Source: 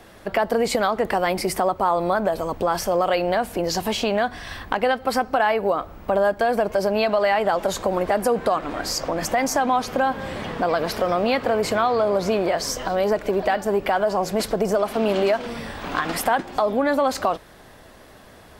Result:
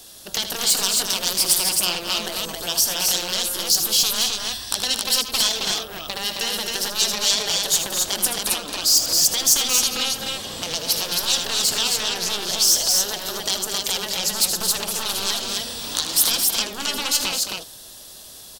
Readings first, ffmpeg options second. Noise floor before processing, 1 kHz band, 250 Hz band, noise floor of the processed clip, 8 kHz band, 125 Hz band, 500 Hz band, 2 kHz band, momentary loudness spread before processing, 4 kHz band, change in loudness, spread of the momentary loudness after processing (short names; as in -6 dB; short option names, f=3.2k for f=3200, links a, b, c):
-47 dBFS, -11.0 dB, -10.0 dB, -42 dBFS, +16.0 dB, -7.5 dB, -14.0 dB, -2.5 dB, 5 LU, +14.0 dB, +2.5 dB, 10 LU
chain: -af "aeval=exprs='0.531*(cos(1*acos(clip(val(0)/0.531,-1,1)))-cos(1*PI/2))+0.237*(cos(7*acos(clip(val(0)/0.531,-1,1)))-cos(7*PI/2))':c=same,aecho=1:1:78.72|218.7|268.2:0.316|0.355|0.708,aexciter=amount=11.8:drive=3.4:freq=3.1k,volume=-14dB"